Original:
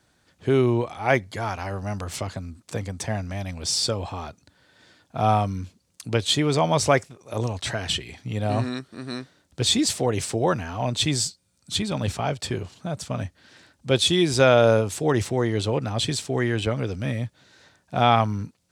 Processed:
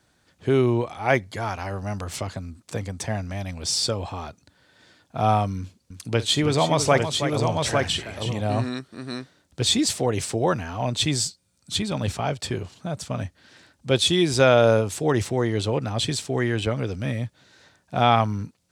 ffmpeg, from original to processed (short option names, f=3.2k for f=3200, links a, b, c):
-filter_complex "[0:a]asettb=1/sr,asplit=3[a][b][c];[a]atrim=end=5.584[d];[b]atrim=start=5.58:end=8.41,asetpts=PTS-STARTPTS,afade=t=in:d=0.004:c=qsin,afade=t=out:st=2.826:d=0.004:c=qsin,aecho=1:1:52|322|851:0.133|0.355|0.596,atrim=end_sample=124803[e];[c]atrim=start=8.406[f];[d][e]acrossfade=d=0.004:c1=hsin:c2=qsin[g];[g][f]acrossfade=d=0.004:c1=qsin:c2=hsin"